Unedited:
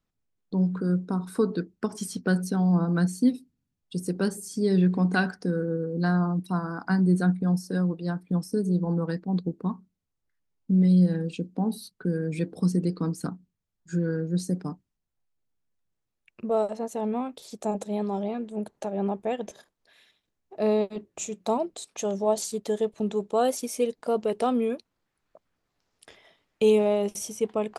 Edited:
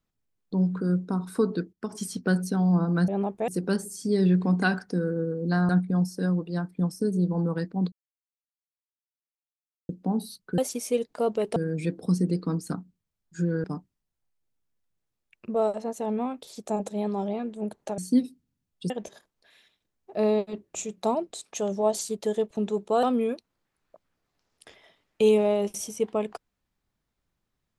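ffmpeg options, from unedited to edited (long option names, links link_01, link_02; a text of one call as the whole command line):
ffmpeg -i in.wav -filter_complex "[0:a]asplit=13[link_01][link_02][link_03][link_04][link_05][link_06][link_07][link_08][link_09][link_10][link_11][link_12][link_13];[link_01]atrim=end=1.73,asetpts=PTS-STARTPTS,afade=type=out:start_time=1.726:duration=0.004:curve=hsin:silence=0.177828[link_14];[link_02]atrim=start=1.73:end=3.082,asetpts=PTS-STARTPTS,afade=type=in:duration=0.25:silence=0.177828[link_15];[link_03]atrim=start=18.928:end=19.332[link_16];[link_04]atrim=start=3.998:end=6.212[link_17];[link_05]atrim=start=7.208:end=9.44,asetpts=PTS-STARTPTS,afade=type=out:start_time=2.228:duration=0.004:curve=hsin[link_18];[link_06]atrim=start=9.44:end=11.41,asetpts=PTS-STARTPTS,volume=0[link_19];[link_07]atrim=start=11.41:end=12.102,asetpts=PTS-STARTPTS,afade=type=in:duration=0.004:curve=hsin[link_20];[link_08]atrim=start=23.458:end=24.442[link_21];[link_09]atrim=start=12.098:end=14.182[link_22];[link_10]atrim=start=14.588:end=18.932[link_23];[link_11]atrim=start=3.078:end=4.002[link_24];[link_12]atrim=start=19.328:end=23.462[link_25];[link_13]atrim=start=24.438[link_26];[link_14][link_15]concat=n=2:v=0:a=1[link_27];[link_27][link_16]acrossfade=duration=0.004:curve1=hsin:curve2=hsin[link_28];[link_28][link_17]acrossfade=duration=0.004:curve1=hsin:curve2=hsin[link_29];[link_18][link_19][link_20]concat=n=3:v=0:a=1[link_30];[link_29][link_30]acrossfade=duration=0.004:curve1=hsin:curve2=hsin[link_31];[link_31][link_21]acrossfade=duration=0.004:curve1=hsin:curve2=hsin[link_32];[link_32][link_22]acrossfade=duration=0.004:curve1=hsin:curve2=hsin[link_33];[link_33][link_23]acrossfade=duration=0.004:curve1=hsin:curve2=hsin[link_34];[link_34][link_24]acrossfade=duration=0.004:curve1=hsin:curve2=hsin[link_35];[link_35][link_25]acrossfade=duration=0.004:curve1=hsin:curve2=hsin[link_36];[link_36][link_26]acrossfade=duration=0.004:curve1=hsin:curve2=hsin" out.wav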